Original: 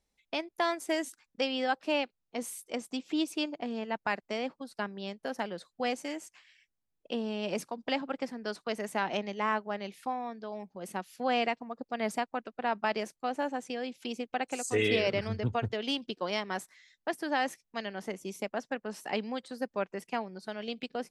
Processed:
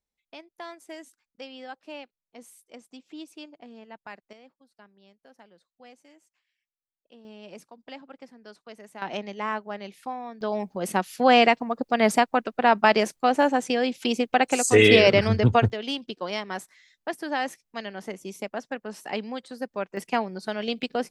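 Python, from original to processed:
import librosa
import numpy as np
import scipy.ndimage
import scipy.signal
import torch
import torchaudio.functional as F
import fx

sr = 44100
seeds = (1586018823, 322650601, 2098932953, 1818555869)

y = fx.gain(x, sr, db=fx.steps((0.0, -10.5), (4.33, -18.5), (7.25, -10.5), (9.02, 0.5), (10.41, 12.0), (15.7, 2.0), (19.97, 8.5)))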